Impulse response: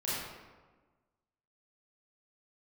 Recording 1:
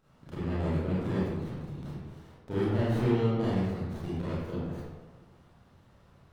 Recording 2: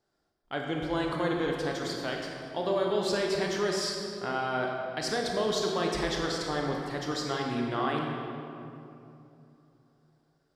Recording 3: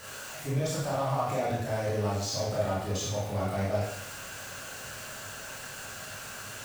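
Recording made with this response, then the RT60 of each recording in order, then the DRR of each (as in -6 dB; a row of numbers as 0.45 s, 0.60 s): 1; 1.3 s, 2.9 s, 0.75 s; -10.0 dB, -0.5 dB, -6.5 dB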